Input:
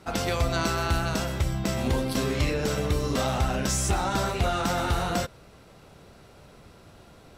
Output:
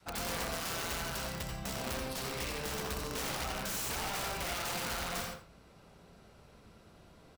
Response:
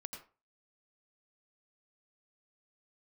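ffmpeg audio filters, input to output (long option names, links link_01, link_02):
-filter_complex "[0:a]adynamicequalizer=threshold=0.0112:dfrequency=350:dqfactor=1.1:tfrequency=350:tqfactor=1.1:attack=5:release=100:ratio=0.375:range=2.5:mode=cutabove:tftype=bell,acrossover=split=300[link_01][link_02];[link_01]alimiter=level_in=1dB:limit=-24dB:level=0:latency=1:release=455,volume=-1dB[link_03];[link_03][link_02]amix=inputs=2:normalize=0,aeval=exprs='(mod(14.1*val(0)+1,2)-1)/14.1':channel_layout=same,aecho=1:1:85:0.188[link_04];[1:a]atrim=start_sample=2205[link_05];[link_04][link_05]afir=irnorm=-1:irlink=0,volume=-4.5dB"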